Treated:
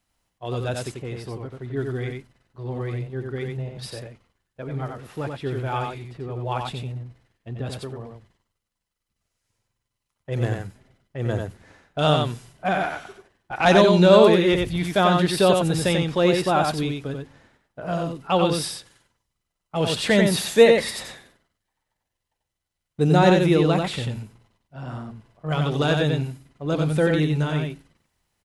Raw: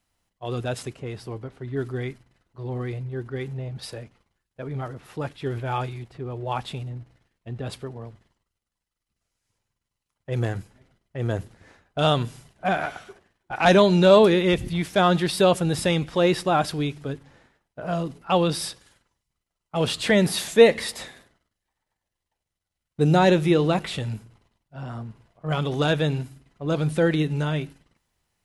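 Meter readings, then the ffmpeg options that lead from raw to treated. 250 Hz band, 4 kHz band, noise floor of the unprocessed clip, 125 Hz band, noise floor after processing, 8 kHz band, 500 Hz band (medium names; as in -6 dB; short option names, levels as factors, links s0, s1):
+1.5 dB, +1.5 dB, -84 dBFS, +2.0 dB, -82 dBFS, +1.5 dB, +1.5 dB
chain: -af "aecho=1:1:91:0.631"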